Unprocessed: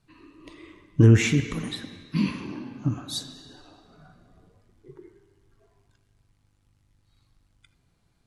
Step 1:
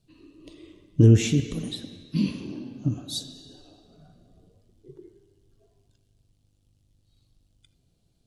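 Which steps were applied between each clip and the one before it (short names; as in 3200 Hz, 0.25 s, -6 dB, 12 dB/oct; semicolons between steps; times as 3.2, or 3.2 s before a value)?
band shelf 1400 Hz -12.5 dB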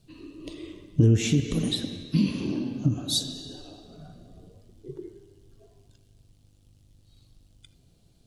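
compressor 2.5:1, threshold -29 dBFS, peak gain reduction 12 dB; gain +7.5 dB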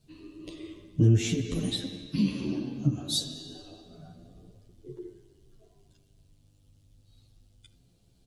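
endless flanger 10.4 ms +0.32 Hz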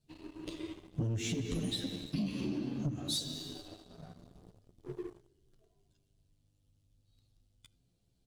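sample leveller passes 2; compressor 6:1, threshold -25 dBFS, peak gain reduction 10.5 dB; gain -7 dB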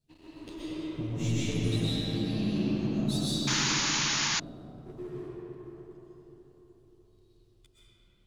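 digital reverb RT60 4.5 s, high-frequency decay 0.45×, pre-delay 85 ms, DRR -10 dB; painted sound noise, 3.47–4.4, 810–7100 Hz -25 dBFS; gain -4 dB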